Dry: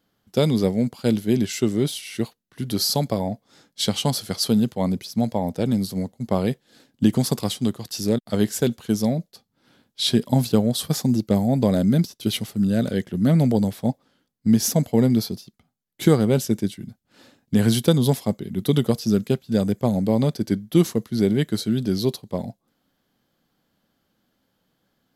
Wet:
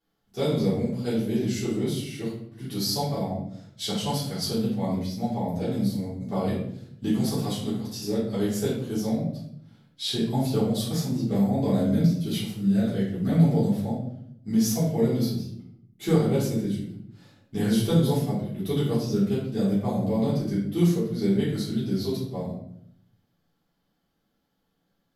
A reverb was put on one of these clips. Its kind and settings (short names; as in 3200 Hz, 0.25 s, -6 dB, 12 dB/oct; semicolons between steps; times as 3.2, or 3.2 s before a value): shoebox room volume 140 m³, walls mixed, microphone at 3.5 m; gain -17 dB